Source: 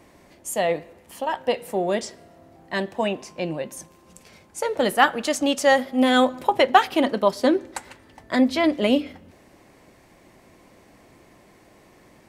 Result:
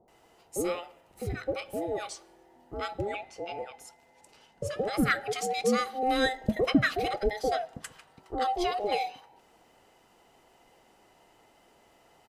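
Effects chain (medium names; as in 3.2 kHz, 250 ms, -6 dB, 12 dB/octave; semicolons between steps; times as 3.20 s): every band turned upside down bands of 1 kHz; 2.93–4.87 s: treble shelf 6.8 kHz -> 11 kHz -9 dB; bands offset in time lows, highs 80 ms, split 740 Hz; trim -7 dB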